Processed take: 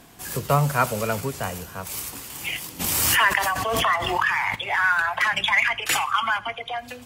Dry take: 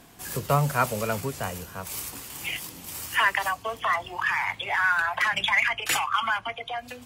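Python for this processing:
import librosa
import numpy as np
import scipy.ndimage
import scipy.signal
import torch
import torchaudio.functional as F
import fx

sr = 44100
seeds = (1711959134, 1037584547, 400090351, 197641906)

y = fx.echo_feedback(x, sr, ms=83, feedback_pct=47, wet_db=-22)
y = fx.pre_swell(y, sr, db_per_s=22.0, at=(2.79, 4.54), fade=0.02)
y = y * 10.0 ** (2.5 / 20.0)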